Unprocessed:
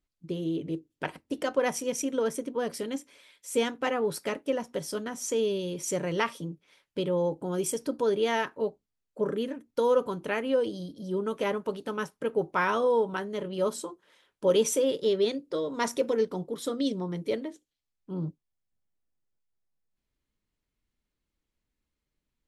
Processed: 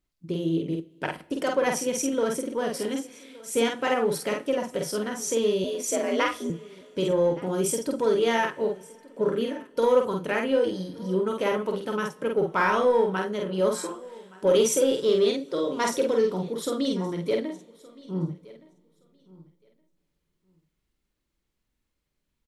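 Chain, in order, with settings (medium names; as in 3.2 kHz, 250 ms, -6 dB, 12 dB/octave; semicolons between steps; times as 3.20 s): in parallel at -10 dB: hard clipper -24 dBFS, distortion -12 dB; on the sum: doubling 48 ms -3 dB; 5.64–6.50 s: frequency shift +75 Hz; feedback delay 1169 ms, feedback 16%, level -22 dB; two-slope reverb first 0.48 s, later 4 s, from -18 dB, DRR 16 dB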